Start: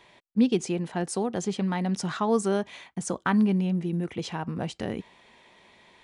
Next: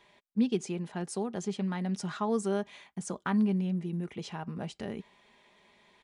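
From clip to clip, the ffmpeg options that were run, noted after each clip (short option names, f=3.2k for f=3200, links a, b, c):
-af "aecho=1:1:4.9:0.35,volume=-7dB"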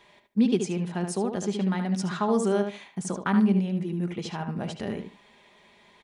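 -filter_complex "[0:a]asplit=2[a][b];[b]adelay=74,lowpass=f=3.3k:p=1,volume=-6dB,asplit=2[c][d];[d]adelay=74,lowpass=f=3.3k:p=1,volume=0.2,asplit=2[e][f];[f]adelay=74,lowpass=f=3.3k:p=1,volume=0.2[g];[a][c][e][g]amix=inputs=4:normalize=0,volume=5dB"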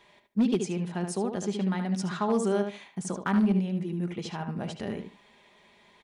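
-af "volume=16dB,asoftclip=hard,volume=-16dB,volume=-2dB"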